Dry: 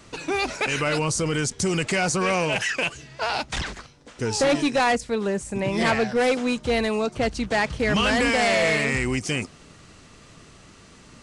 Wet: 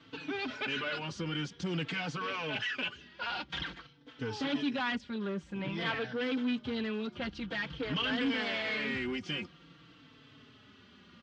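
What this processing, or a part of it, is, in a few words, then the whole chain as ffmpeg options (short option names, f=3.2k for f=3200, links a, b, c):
barber-pole flanger into a guitar amplifier: -filter_complex "[0:a]asplit=2[a][b];[b]adelay=4,afreqshift=-0.5[c];[a][c]amix=inputs=2:normalize=1,asoftclip=type=tanh:threshold=-23.5dB,highpass=86,equalizer=f=170:t=q:w=4:g=3,equalizer=f=270:t=q:w=4:g=7,equalizer=f=660:t=q:w=4:g=-5,equalizer=f=1.5k:t=q:w=4:g=6,equalizer=f=3.2k:t=q:w=4:g=10,lowpass=f=4.5k:w=0.5412,lowpass=f=4.5k:w=1.3066,volume=-7.5dB"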